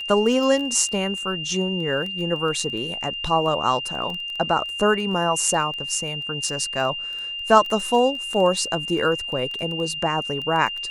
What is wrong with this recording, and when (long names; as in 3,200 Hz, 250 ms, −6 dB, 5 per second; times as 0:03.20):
surface crackle 10 per second −27 dBFS
whistle 2,800 Hz −28 dBFS